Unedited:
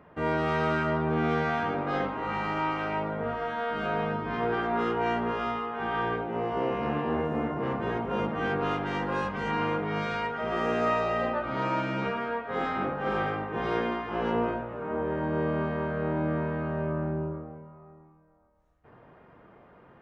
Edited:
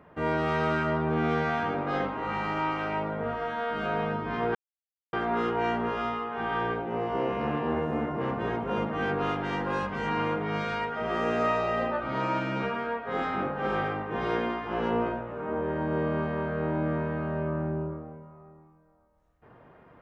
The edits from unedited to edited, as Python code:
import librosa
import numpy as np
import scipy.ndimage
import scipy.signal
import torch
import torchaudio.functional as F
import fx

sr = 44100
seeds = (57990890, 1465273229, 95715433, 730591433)

y = fx.edit(x, sr, fx.insert_silence(at_s=4.55, length_s=0.58), tone=tone)